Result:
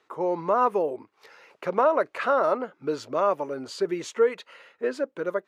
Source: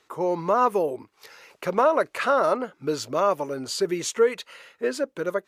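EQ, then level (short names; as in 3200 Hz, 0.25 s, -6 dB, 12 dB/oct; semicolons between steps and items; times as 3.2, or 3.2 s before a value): HPF 240 Hz 6 dB/oct; LPF 1900 Hz 6 dB/oct; 0.0 dB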